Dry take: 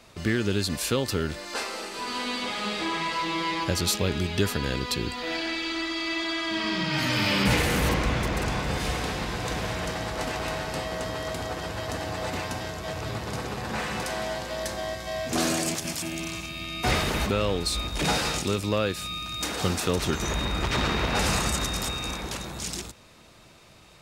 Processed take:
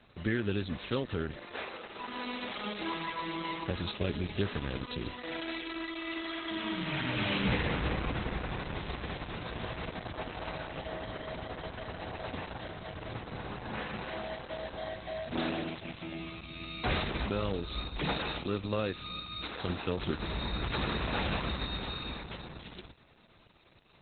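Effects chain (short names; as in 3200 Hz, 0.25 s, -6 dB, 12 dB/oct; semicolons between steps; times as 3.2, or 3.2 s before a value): tape echo 0.363 s, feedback 45%, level -21.5 dB, low-pass 1400 Hz; 19.15–19.69 dynamic EQ 210 Hz, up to -5 dB, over -41 dBFS, Q 0.78; gain -5.5 dB; Opus 8 kbps 48000 Hz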